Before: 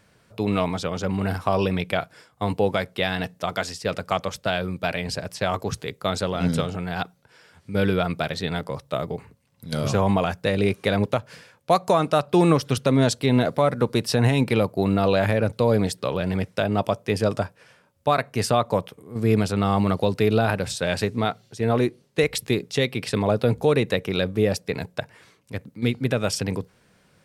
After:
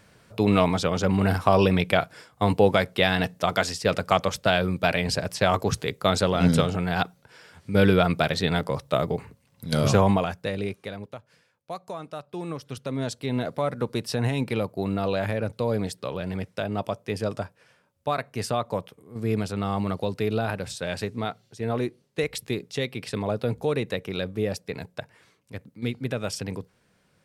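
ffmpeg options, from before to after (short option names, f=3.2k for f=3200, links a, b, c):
-af "volume=13.5dB,afade=t=out:st=9.94:d=0.32:silence=0.446684,afade=t=out:st=10.26:d=0.73:silence=0.237137,afade=t=in:st=12.45:d=1.26:silence=0.298538"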